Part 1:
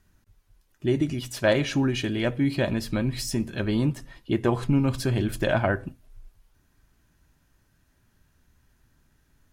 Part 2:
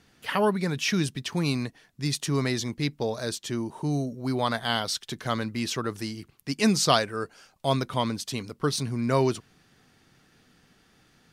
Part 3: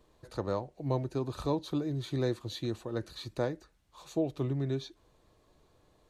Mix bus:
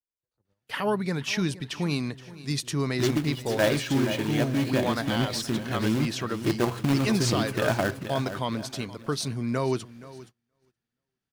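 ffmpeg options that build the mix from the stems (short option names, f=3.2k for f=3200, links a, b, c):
-filter_complex "[0:a]highpass=88,acrusher=bits=2:mode=log:mix=0:aa=0.000001,adelay=2150,volume=-2.5dB,asplit=2[a][b];[b]volume=-10dB[c];[1:a]alimiter=limit=-15.5dB:level=0:latency=1:release=90,adelay=450,volume=-1dB,asplit=2[d][e];[e]volume=-18dB[f];[2:a]acrossover=split=210[g][h];[h]acompressor=threshold=-42dB:ratio=5[i];[g][i]amix=inputs=2:normalize=0,volume=-14.5dB[j];[c][f]amix=inputs=2:normalize=0,aecho=0:1:473|946|1419|1892|2365:1|0.37|0.137|0.0507|0.0187[k];[a][d][j][k]amix=inputs=4:normalize=0,agate=range=-28dB:threshold=-47dB:ratio=16:detection=peak,adynamicequalizer=threshold=0.00562:dfrequency=4800:dqfactor=0.7:tfrequency=4800:tqfactor=0.7:attack=5:release=100:ratio=0.375:range=2:mode=cutabove:tftype=highshelf"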